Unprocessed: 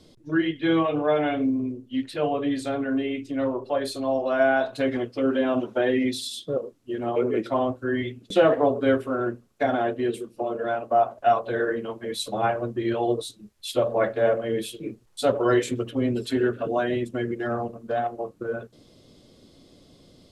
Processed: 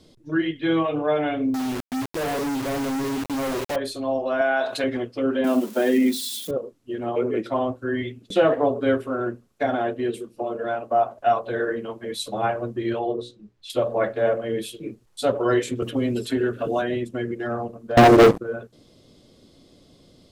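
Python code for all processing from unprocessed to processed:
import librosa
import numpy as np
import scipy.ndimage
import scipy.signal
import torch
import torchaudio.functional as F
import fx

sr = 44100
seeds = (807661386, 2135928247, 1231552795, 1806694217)

y = fx.chain(x, sr, fx.savgol(points=65),
    fx.quant_companded(bits=2), at=(1.54, 3.76))
y = fx.chain(y, sr, fx.highpass(hz=620.0, slope=6),
    fx.env_flatten(amount_pct=50), at=(4.41, 4.84))
y = fx.chain(y, sr, fx.crossing_spikes(level_db=-28.5),
    fx.low_shelf_res(hz=140.0, db=-13.0, q=3.0), at=(5.44, 6.51))
y = fx.chain(y, sr, fx.lowpass(hz=5600.0, slope=12),
    fx.high_shelf(hz=2400.0, db=-7.5),
    fx.hum_notches(base_hz=60, count=9), at=(12.99, 13.7))
y = fx.chain(y, sr, fx.high_shelf(hz=7400.0, db=6.5),
    fx.band_squash(depth_pct=70), at=(15.82, 16.82))
y = fx.chain(y, sr, fx.low_shelf_res(hz=630.0, db=13.5, q=1.5),
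    fx.leveller(passes=5), at=(17.97, 18.38))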